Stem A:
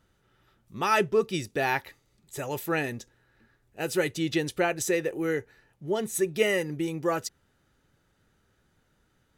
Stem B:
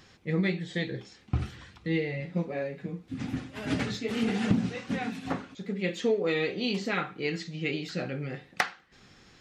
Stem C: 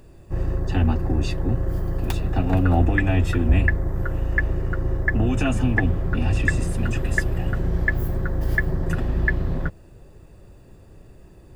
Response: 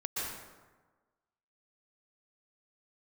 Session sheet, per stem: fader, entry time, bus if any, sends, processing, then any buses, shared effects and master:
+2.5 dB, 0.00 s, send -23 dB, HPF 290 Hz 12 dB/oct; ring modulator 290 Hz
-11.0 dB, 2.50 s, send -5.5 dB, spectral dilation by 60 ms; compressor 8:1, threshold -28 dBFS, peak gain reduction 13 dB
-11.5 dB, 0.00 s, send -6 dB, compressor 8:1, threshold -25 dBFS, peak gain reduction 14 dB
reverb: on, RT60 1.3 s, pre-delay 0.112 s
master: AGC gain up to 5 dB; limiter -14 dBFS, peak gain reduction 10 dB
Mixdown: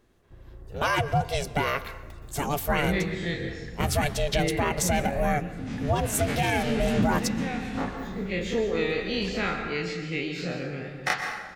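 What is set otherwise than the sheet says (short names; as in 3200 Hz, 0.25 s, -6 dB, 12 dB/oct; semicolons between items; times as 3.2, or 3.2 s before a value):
stem A: missing HPF 290 Hz 12 dB/oct; stem B: missing compressor 8:1, threshold -28 dBFS, peak gain reduction 13 dB; stem C -11.5 dB -> -23.5 dB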